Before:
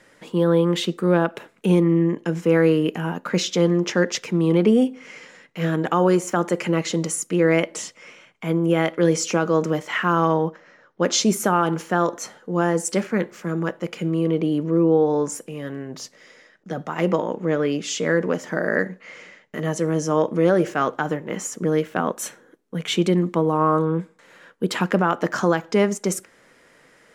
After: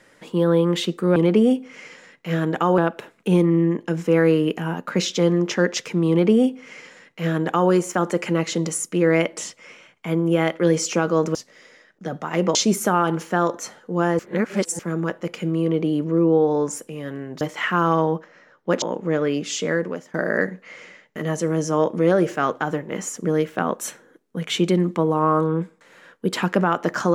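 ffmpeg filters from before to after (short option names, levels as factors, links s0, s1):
-filter_complex "[0:a]asplit=10[s0][s1][s2][s3][s4][s5][s6][s7][s8][s9];[s0]atrim=end=1.162[s10];[s1]atrim=start=4.468:end=6.092[s11];[s2]atrim=start=1.158:end=9.732[s12];[s3]atrim=start=15.998:end=17.202[s13];[s4]atrim=start=11.138:end=12.782[s14];[s5]atrim=start=12.778:end=13.382,asetpts=PTS-STARTPTS,areverse[s15];[s6]atrim=start=13.378:end=16.002[s16];[s7]atrim=start=9.728:end=11.142[s17];[s8]atrim=start=17.198:end=18.52,asetpts=PTS-STARTPTS,afade=t=out:st=0.802:d=0.52:silence=0.133352[s18];[s9]atrim=start=18.52,asetpts=PTS-STARTPTS,afade=t=in:d=0.004:c=hsin:silence=0.133352[s19];[s10][s11]acrossfade=d=0.004:c1=hsin:c2=hsin[s20];[s20][s12]acrossfade=d=0.004:c1=hsin:c2=hsin[s21];[s21][s13]acrossfade=d=0.004:c1=hsin:c2=hsin[s22];[s22][s14]acrossfade=d=0.004:c1=hsin:c2=hsin[s23];[s23][s15]acrossfade=d=0.004:c1=hsin:c2=hsin[s24];[s24][s16]acrossfade=d=0.004:c1=hsin:c2=hsin[s25];[s25][s17]acrossfade=d=0.004:c1=hsin:c2=hsin[s26];[s18][s19]concat=n=2:v=0:a=1[s27];[s26][s27]acrossfade=d=0.004:c1=hsin:c2=hsin"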